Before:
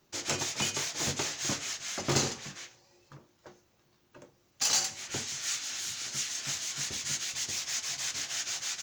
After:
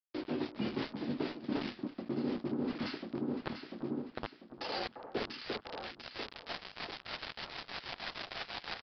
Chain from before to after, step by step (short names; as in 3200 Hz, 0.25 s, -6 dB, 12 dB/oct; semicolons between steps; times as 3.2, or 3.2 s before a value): dynamic EQ 240 Hz, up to +4 dB, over -51 dBFS, Q 1.9; high-pass sweep 260 Hz -> 750 Hz, 3.04–6.88; tilt -4 dB/oct; vibrato 0.94 Hz 97 cents; sample gate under -35.5 dBFS; echo with dull and thin repeats by turns 0.347 s, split 1400 Hz, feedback 62%, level -10.5 dB; reverse; compressor 20:1, threshold -44 dBFS, peak gain reduction 31 dB; reverse; downsampling 11025 Hz; gain +11.5 dB